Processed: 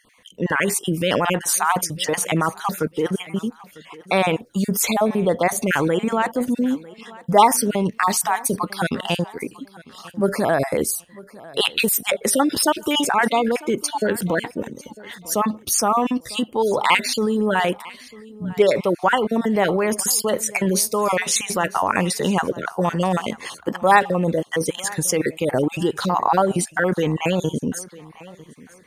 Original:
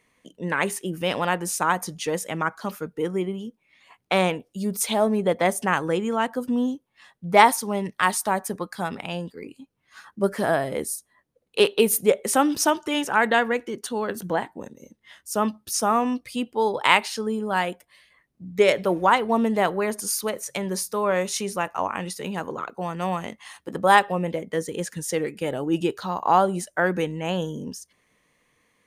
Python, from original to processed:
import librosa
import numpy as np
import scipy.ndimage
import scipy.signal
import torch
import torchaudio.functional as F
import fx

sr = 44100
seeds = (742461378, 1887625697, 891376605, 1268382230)

p1 = fx.spec_dropout(x, sr, seeds[0], share_pct=33)
p2 = fx.over_compress(p1, sr, threshold_db=-29.0, ratio=-0.5)
p3 = p1 + (p2 * 10.0 ** (0.0 / 20.0))
p4 = fx.echo_feedback(p3, sr, ms=949, feedback_pct=29, wet_db=-21)
y = p4 * 10.0 ** (2.0 / 20.0)